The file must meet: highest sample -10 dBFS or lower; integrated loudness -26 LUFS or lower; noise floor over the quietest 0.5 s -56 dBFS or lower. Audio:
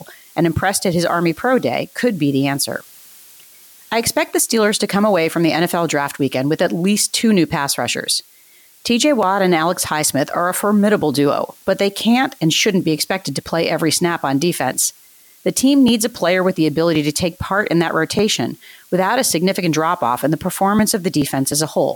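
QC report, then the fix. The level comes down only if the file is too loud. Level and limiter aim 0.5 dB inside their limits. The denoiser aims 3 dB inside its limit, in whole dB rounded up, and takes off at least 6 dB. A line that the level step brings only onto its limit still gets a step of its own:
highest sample -5.5 dBFS: fail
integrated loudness -17.0 LUFS: fail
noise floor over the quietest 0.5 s -48 dBFS: fail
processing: trim -9.5 dB

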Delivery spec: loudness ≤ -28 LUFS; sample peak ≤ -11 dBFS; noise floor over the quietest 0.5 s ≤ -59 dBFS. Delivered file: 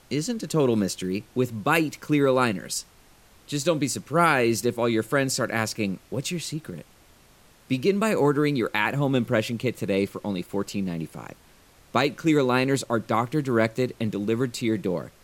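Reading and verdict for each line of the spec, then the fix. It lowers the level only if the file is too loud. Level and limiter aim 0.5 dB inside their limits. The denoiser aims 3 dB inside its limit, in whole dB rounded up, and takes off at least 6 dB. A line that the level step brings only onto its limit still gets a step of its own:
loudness -25.0 LUFS: fail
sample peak -6.5 dBFS: fail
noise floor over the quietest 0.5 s -55 dBFS: fail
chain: noise reduction 6 dB, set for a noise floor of -55 dBFS; trim -3.5 dB; peak limiter -11.5 dBFS

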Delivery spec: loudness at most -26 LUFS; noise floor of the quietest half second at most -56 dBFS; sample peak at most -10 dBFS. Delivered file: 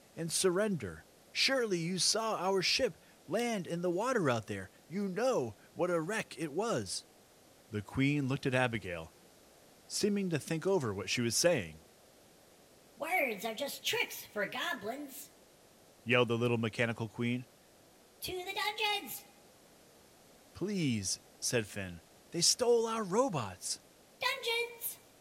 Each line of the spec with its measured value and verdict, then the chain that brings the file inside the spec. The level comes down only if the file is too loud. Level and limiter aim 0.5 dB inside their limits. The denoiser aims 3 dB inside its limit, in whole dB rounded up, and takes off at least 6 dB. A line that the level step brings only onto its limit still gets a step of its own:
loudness -33.5 LUFS: pass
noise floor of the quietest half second -62 dBFS: pass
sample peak -13.0 dBFS: pass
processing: none needed

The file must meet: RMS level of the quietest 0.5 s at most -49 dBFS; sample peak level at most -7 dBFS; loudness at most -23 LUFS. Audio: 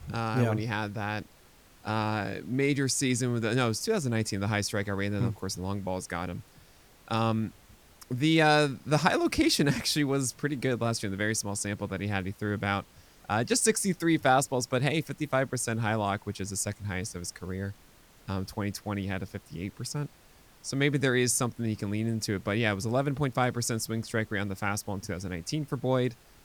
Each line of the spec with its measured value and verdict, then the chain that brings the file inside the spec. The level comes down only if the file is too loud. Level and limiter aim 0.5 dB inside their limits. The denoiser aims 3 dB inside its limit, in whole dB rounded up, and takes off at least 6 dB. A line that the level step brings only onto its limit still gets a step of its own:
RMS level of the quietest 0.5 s -57 dBFS: pass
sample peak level -8.0 dBFS: pass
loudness -29.5 LUFS: pass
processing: none needed

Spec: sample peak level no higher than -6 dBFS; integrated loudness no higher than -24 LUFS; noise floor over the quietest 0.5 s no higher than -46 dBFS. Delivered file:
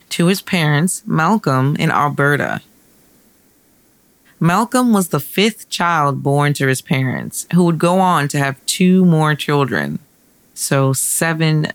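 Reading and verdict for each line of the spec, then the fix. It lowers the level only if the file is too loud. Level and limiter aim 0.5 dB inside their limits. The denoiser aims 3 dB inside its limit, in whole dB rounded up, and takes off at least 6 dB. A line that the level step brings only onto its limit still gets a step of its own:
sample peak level -2.0 dBFS: fail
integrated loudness -15.5 LUFS: fail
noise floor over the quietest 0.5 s -54 dBFS: pass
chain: trim -9 dB

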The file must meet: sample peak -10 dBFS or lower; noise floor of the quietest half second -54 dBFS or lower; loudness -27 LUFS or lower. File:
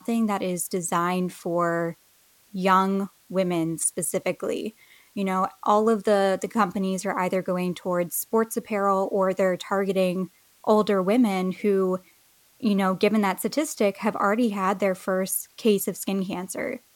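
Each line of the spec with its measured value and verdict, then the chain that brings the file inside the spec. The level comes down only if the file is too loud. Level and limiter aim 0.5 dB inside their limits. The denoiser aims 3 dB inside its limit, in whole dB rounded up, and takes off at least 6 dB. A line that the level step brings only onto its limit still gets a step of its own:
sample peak -7.0 dBFS: fail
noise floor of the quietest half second -60 dBFS: pass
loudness -24.5 LUFS: fail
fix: trim -3 dB; peak limiter -10.5 dBFS

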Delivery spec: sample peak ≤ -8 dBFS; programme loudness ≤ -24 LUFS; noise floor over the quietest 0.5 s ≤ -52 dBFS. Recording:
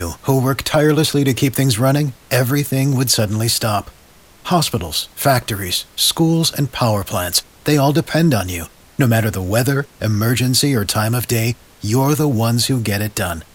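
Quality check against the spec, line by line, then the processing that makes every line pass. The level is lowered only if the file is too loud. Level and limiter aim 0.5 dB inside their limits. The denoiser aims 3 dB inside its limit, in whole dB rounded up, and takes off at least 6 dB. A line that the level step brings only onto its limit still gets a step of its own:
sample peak -2.0 dBFS: fail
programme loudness -17.0 LUFS: fail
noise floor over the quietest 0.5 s -46 dBFS: fail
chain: trim -7.5 dB

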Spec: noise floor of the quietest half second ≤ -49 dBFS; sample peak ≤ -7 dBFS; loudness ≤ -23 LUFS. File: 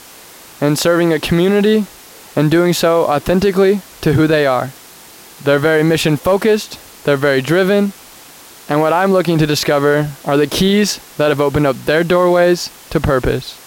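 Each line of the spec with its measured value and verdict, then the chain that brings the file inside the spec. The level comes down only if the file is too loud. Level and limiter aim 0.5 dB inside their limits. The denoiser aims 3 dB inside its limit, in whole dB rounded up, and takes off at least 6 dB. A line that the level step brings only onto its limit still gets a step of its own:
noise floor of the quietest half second -39 dBFS: fail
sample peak -3.5 dBFS: fail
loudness -14.0 LUFS: fail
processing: noise reduction 6 dB, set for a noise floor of -39 dBFS; trim -9.5 dB

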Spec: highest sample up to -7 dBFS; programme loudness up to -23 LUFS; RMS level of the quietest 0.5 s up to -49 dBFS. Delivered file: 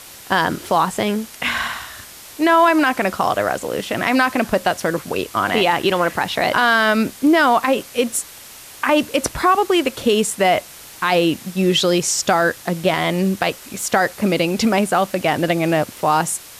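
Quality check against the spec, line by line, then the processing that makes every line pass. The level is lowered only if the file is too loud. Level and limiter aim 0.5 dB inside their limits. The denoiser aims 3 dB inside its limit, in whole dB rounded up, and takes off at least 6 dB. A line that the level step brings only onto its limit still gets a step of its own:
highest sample -4.0 dBFS: fail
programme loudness -18.0 LUFS: fail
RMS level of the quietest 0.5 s -39 dBFS: fail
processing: noise reduction 8 dB, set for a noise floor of -39 dBFS; trim -5.5 dB

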